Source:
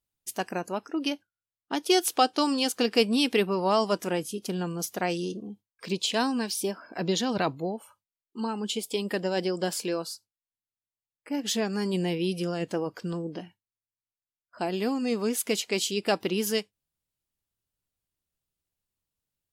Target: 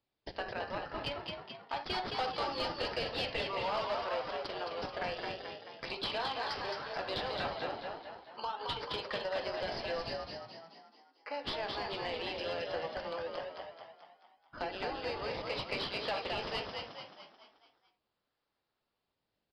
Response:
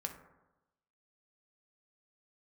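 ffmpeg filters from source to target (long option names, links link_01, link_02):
-filter_complex "[0:a]highpass=frequency=590:width=0.5412,highpass=frequency=590:width=1.3066[link_01];[1:a]atrim=start_sample=2205,atrim=end_sample=3528[link_02];[link_01][link_02]afir=irnorm=-1:irlink=0,asplit=2[link_03][link_04];[link_04]acrusher=samples=26:mix=1:aa=0.000001:lfo=1:lforange=26:lforate=0.42,volume=-3.5dB[link_05];[link_03][link_05]amix=inputs=2:normalize=0,asoftclip=type=hard:threshold=-23.5dB,acompressor=threshold=-43dB:ratio=2.5,asplit=2[link_06][link_07];[link_07]asplit=6[link_08][link_09][link_10][link_11][link_12][link_13];[link_08]adelay=217,afreqshift=51,volume=-4dB[link_14];[link_09]adelay=434,afreqshift=102,volume=-10dB[link_15];[link_10]adelay=651,afreqshift=153,volume=-16dB[link_16];[link_11]adelay=868,afreqshift=204,volume=-22.1dB[link_17];[link_12]adelay=1085,afreqshift=255,volume=-28.1dB[link_18];[link_13]adelay=1302,afreqshift=306,volume=-34.1dB[link_19];[link_14][link_15][link_16][link_17][link_18][link_19]amix=inputs=6:normalize=0[link_20];[link_06][link_20]amix=inputs=2:normalize=0,aresample=11025,aresample=44100,asoftclip=type=tanh:threshold=-28.5dB,volume=4.5dB"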